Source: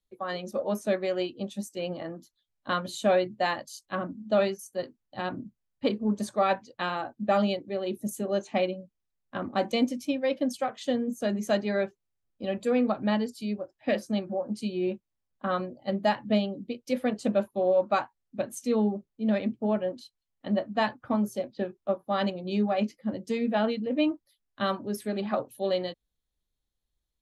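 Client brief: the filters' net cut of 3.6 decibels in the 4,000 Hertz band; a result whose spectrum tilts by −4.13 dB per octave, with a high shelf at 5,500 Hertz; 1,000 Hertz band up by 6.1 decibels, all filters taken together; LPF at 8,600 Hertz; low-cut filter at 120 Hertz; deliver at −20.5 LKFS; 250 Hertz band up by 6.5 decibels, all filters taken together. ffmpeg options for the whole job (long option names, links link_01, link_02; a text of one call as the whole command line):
ffmpeg -i in.wav -af "highpass=120,lowpass=8600,equalizer=frequency=250:width_type=o:gain=8,equalizer=frequency=1000:width_type=o:gain=8,equalizer=frequency=4000:width_type=o:gain=-8.5,highshelf=frequency=5500:gain=8,volume=4dB" out.wav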